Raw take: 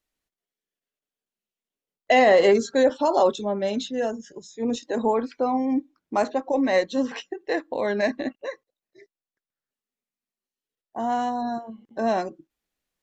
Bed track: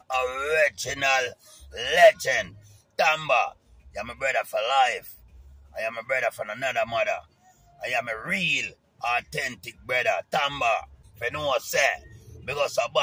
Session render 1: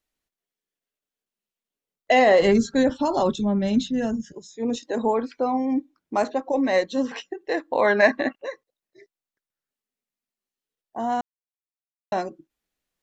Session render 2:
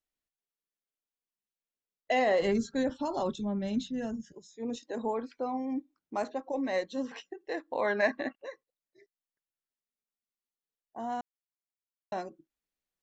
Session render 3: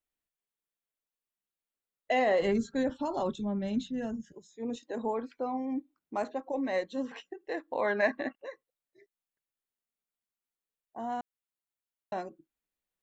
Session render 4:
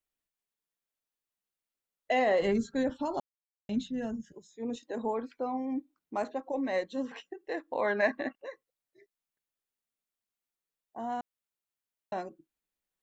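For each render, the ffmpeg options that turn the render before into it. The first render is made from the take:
ffmpeg -i in.wav -filter_complex "[0:a]asplit=3[link_01][link_02][link_03];[link_01]afade=type=out:start_time=2.41:duration=0.02[link_04];[link_02]asubboost=boost=10.5:cutoff=170,afade=type=in:start_time=2.41:duration=0.02,afade=type=out:start_time=4.32:duration=0.02[link_05];[link_03]afade=type=in:start_time=4.32:duration=0.02[link_06];[link_04][link_05][link_06]amix=inputs=3:normalize=0,asplit=3[link_07][link_08][link_09];[link_07]afade=type=out:start_time=7.72:duration=0.02[link_10];[link_08]equalizer=frequency=1300:width_type=o:width=2.3:gain=11.5,afade=type=in:start_time=7.72:duration=0.02,afade=type=out:start_time=8.42:duration=0.02[link_11];[link_09]afade=type=in:start_time=8.42:duration=0.02[link_12];[link_10][link_11][link_12]amix=inputs=3:normalize=0,asplit=3[link_13][link_14][link_15];[link_13]atrim=end=11.21,asetpts=PTS-STARTPTS,afade=type=out:start_time=11.206:duration=0.004:curve=hsin[link_16];[link_14]atrim=start=11.21:end=12.12,asetpts=PTS-STARTPTS,volume=0[link_17];[link_15]atrim=start=12.12,asetpts=PTS-STARTPTS,afade=type=in:duration=0.004:curve=hsin[link_18];[link_16][link_17][link_18]concat=n=3:v=0:a=1" out.wav
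ffmpeg -i in.wav -af "volume=-10dB" out.wav
ffmpeg -i in.wav -af "equalizer=frequency=5300:width=2:gain=-7" out.wav
ffmpeg -i in.wav -filter_complex "[0:a]asplit=3[link_01][link_02][link_03];[link_01]atrim=end=3.2,asetpts=PTS-STARTPTS,afade=type=out:start_time=3.196:duration=0.004:curve=hsin[link_04];[link_02]atrim=start=3.2:end=3.69,asetpts=PTS-STARTPTS,volume=0[link_05];[link_03]atrim=start=3.69,asetpts=PTS-STARTPTS,afade=type=in:duration=0.004:curve=hsin[link_06];[link_04][link_05][link_06]concat=n=3:v=0:a=1" out.wav

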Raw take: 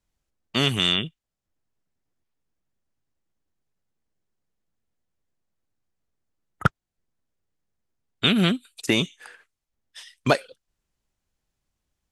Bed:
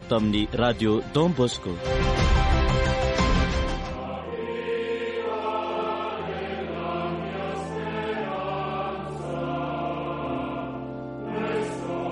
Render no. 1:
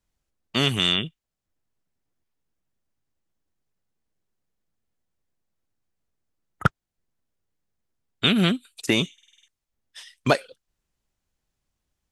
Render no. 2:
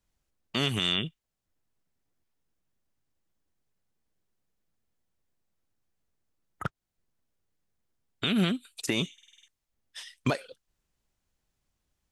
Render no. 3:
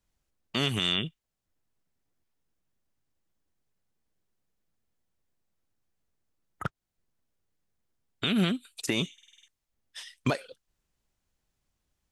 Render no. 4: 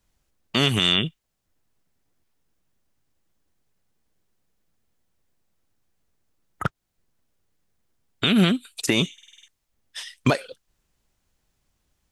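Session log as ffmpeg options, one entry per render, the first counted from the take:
ffmpeg -i in.wav -filter_complex "[0:a]asplit=8[link_01][link_02][link_03][link_04][link_05][link_06][link_07][link_08];[link_01]atrim=end=9.182[link_09];[link_02]atrim=start=9.128:end=9.182[link_10];[link_03]atrim=start=9.128:end=9.182[link_11];[link_04]atrim=start=9.128:end=9.182[link_12];[link_05]atrim=start=9.128:end=9.182[link_13];[link_06]atrim=start=9.128:end=9.182[link_14];[link_07]atrim=start=9.128:end=9.182[link_15];[link_08]atrim=start=9.478[link_16];[link_09][link_10]acrossfade=duration=0.004:curve1=hsin:curve2=hsin[link_17];[link_17][link_11]acrossfade=duration=0.004:curve1=hsin:curve2=hsin[link_18];[link_18][link_12]acrossfade=duration=0.004:curve1=hsin:curve2=hsin[link_19];[link_19][link_13]acrossfade=duration=0.004:curve1=hsin:curve2=hsin[link_20];[link_20][link_14]acrossfade=duration=0.004:curve1=hsin:curve2=hsin[link_21];[link_21][link_15]acrossfade=duration=0.004:curve1=hsin:curve2=hsin[link_22];[link_22][link_16]acrossfade=duration=0.004:curve1=hsin:curve2=hsin" out.wav
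ffmpeg -i in.wav -af "acompressor=threshold=-22dB:ratio=2.5,alimiter=limit=-14.5dB:level=0:latency=1:release=105" out.wav
ffmpeg -i in.wav -af anull out.wav
ffmpeg -i in.wav -af "volume=7.5dB" out.wav

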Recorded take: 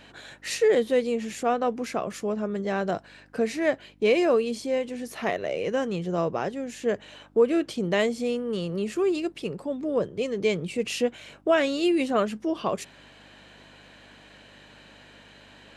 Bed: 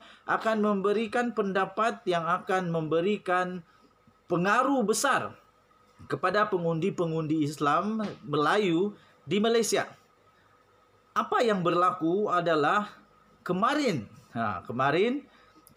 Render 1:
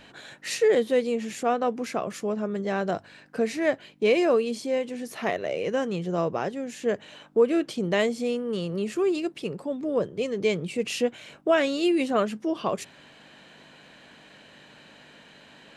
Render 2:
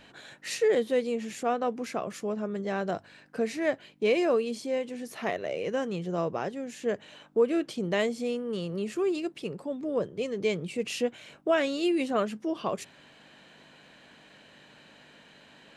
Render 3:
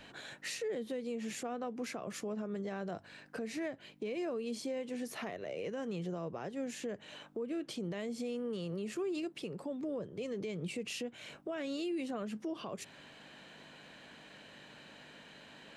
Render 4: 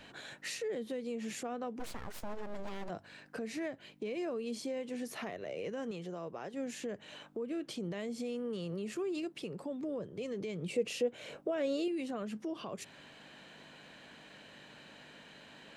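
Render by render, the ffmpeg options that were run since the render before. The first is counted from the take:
ffmpeg -i in.wav -af "bandreject=frequency=50:width_type=h:width=4,bandreject=frequency=100:width_type=h:width=4" out.wav
ffmpeg -i in.wav -af "volume=-3.5dB" out.wav
ffmpeg -i in.wav -filter_complex "[0:a]acrossover=split=280[link_01][link_02];[link_02]acompressor=threshold=-31dB:ratio=6[link_03];[link_01][link_03]amix=inputs=2:normalize=0,alimiter=level_in=7dB:limit=-24dB:level=0:latency=1:release=199,volume=-7dB" out.wav
ffmpeg -i in.wav -filter_complex "[0:a]asplit=3[link_01][link_02][link_03];[link_01]afade=type=out:start_time=1.79:duration=0.02[link_04];[link_02]aeval=exprs='abs(val(0))':channel_layout=same,afade=type=in:start_time=1.79:duration=0.02,afade=type=out:start_time=2.88:duration=0.02[link_05];[link_03]afade=type=in:start_time=2.88:duration=0.02[link_06];[link_04][link_05][link_06]amix=inputs=3:normalize=0,asettb=1/sr,asplit=3[link_07][link_08][link_09];[link_07]atrim=end=5.914[link_10];[link_08]atrim=start=5.91:end=6.54,asetpts=PTS-STARTPTS,afade=type=in:duration=0.004:curve=qsin,afade=type=out:start_time=0.626:duration=0.004:curve=qsin,lowshelf=frequency=200:gain=-10.5[link_11];[link_09]atrim=start=6.536[link_12];[link_10][link_11]acrossfade=duration=0.004:curve1=hsin:curve2=qsin[link_13];[link_13][link_12]acrossfade=duration=0.004:curve1=qsin:curve2=hsin,asettb=1/sr,asplit=3[link_14][link_15][link_16];[link_14]atrim=end=10.694[link_17];[link_15]atrim=start=10.69:end=11.88,asetpts=PTS-STARTPTS,afade=type=in:duration=0.004:curve=qsin,afade=type=out:start_time=1.186:duration=0.004:curve=qsin,equalizer=frequency=500:width_type=o:width=0.77:gain=11[link_18];[link_16]atrim=start=11.876[link_19];[link_17][link_18]acrossfade=duration=0.004:curve1=hsin:curve2=qsin[link_20];[link_20][link_19]acrossfade=duration=0.004:curve1=qsin:curve2=hsin" out.wav

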